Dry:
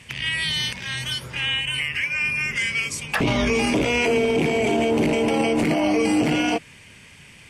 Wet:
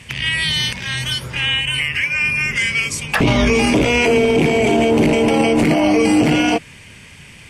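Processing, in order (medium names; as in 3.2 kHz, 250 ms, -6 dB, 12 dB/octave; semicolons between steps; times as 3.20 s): bass shelf 130 Hz +4.5 dB; trim +5.5 dB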